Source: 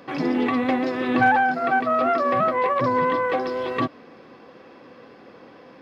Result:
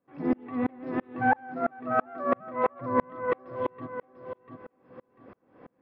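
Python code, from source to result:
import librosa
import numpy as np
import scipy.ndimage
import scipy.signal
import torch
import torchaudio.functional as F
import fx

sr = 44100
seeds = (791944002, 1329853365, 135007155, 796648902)

y = scipy.signal.sosfilt(scipy.signal.butter(2, 1700.0, 'lowpass', fs=sr, output='sos'), x)
y = fx.low_shelf(y, sr, hz=190.0, db=7.5)
y = fx.echo_feedback(y, sr, ms=694, feedback_pct=21, wet_db=-9)
y = fx.tremolo_decay(y, sr, direction='swelling', hz=3.0, depth_db=37)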